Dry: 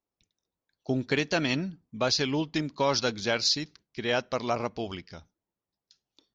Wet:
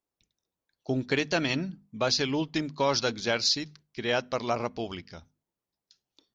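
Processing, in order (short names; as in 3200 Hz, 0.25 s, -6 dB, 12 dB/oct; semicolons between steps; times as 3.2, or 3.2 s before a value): notches 50/100/150/200/250 Hz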